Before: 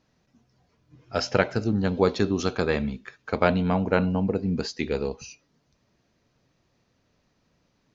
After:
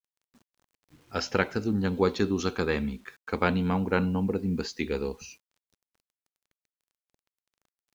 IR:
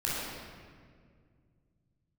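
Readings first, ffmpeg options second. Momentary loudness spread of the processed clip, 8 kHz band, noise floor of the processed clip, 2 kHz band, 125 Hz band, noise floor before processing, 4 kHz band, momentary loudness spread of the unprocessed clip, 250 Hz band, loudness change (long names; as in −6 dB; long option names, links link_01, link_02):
10 LU, can't be measured, below −85 dBFS, −1.5 dB, −3.0 dB, −71 dBFS, −3.0 dB, 10 LU, −2.0 dB, −3.0 dB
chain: -af "equalizer=frequency=125:width_type=o:width=0.33:gain=-10,equalizer=frequency=630:width_type=o:width=0.33:gain=-11,equalizer=frequency=5000:width_type=o:width=0.33:gain=-3,acrusher=bits=9:mix=0:aa=0.000001,volume=-1.5dB"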